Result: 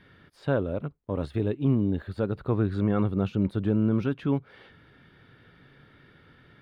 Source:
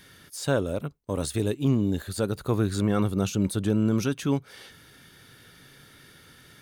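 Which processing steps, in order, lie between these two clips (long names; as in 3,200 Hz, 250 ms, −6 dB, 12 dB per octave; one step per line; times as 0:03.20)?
high-frequency loss of the air 430 metres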